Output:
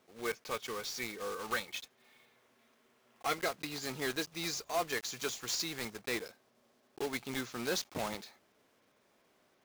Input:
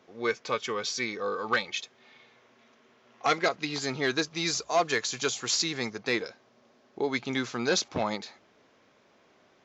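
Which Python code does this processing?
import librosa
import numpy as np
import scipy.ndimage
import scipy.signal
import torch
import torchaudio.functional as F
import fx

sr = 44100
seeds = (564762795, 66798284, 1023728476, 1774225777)

y = fx.block_float(x, sr, bits=3)
y = y * librosa.db_to_amplitude(-8.5)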